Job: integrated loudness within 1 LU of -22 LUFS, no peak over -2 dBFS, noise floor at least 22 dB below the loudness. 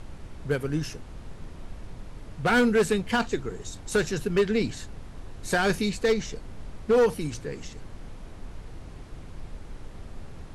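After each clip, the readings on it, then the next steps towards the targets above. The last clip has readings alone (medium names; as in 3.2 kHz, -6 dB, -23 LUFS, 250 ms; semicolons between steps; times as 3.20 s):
clipped samples 0.9%; clipping level -16.0 dBFS; noise floor -43 dBFS; noise floor target -48 dBFS; loudness -26.0 LUFS; peak level -16.0 dBFS; loudness target -22.0 LUFS
-> clip repair -16 dBFS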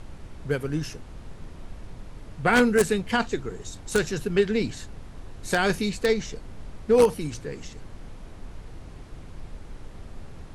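clipped samples 0.0%; noise floor -43 dBFS; noise floor target -47 dBFS
-> noise print and reduce 6 dB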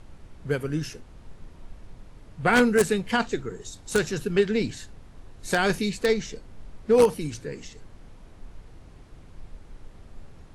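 noise floor -49 dBFS; loudness -24.5 LUFS; peak level -7.0 dBFS; loudness target -22.0 LUFS
-> trim +2.5 dB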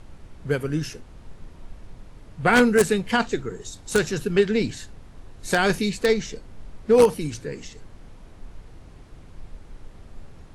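loudness -22.0 LUFS; peak level -4.5 dBFS; noise floor -46 dBFS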